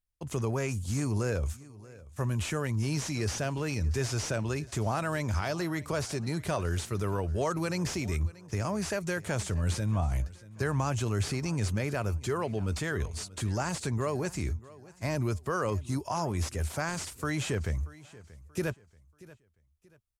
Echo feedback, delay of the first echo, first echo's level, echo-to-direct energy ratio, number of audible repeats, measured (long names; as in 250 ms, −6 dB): 33%, 633 ms, −20.0 dB, −19.5 dB, 2